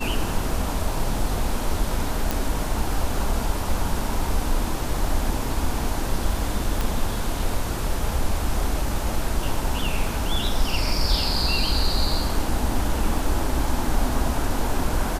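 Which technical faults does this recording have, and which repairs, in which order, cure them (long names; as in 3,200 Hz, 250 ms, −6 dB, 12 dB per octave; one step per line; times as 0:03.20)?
0:02.31: click
0:06.81: click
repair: click removal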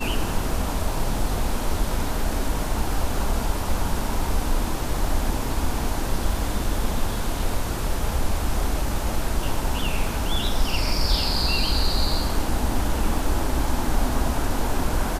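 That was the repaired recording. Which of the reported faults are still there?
0:06.81: click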